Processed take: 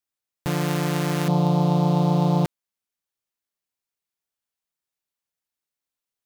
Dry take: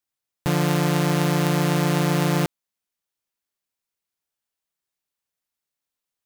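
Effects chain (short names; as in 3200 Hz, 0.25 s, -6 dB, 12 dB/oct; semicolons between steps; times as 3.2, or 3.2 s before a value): 1.28–2.45 EQ curve 120 Hz 0 dB, 200 Hz +9 dB, 310 Hz -1 dB, 520 Hz +3 dB, 920 Hz +7 dB, 1700 Hz -20 dB, 3800 Hz -2 dB, 8300 Hz -14 dB; gain -3 dB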